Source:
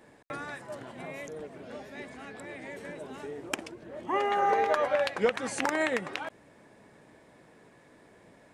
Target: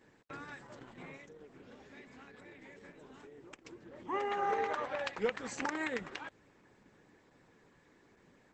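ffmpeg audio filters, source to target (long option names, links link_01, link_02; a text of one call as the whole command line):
ffmpeg -i in.wav -filter_complex "[0:a]equalizer=frequency=640:width_type=o:width=0.27:gain=-13,asplit=3[link_01][link_02][link_03];[link_01]afade=type=out:start_time=1.16:duration=0.02[link_04];[link_02]acompressor=threshold=-44dB:ratio=6,afade=type=in:start_time=1.16:duration=0.02,afade=type=out:start_time=3.64:duration=0.02[link_05];[link_03]afade=type=in:start_time=3.64:duration=0.02[link_06];[link_04][link_05][link_06]amix=inputs=3:normalize=0,volume=-5.5dB" -ar 48000 -c:a libopus -b:a 12k out.opus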